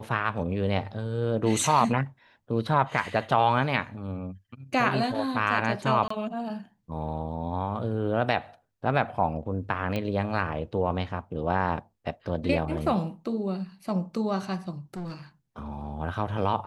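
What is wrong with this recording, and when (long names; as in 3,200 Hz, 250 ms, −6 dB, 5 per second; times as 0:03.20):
0:06.08–0:06.10: drop-out 24 ms
0:09.96: click −17 dBFS
0:14.77–0:15.13: clipping −31.5 dBFS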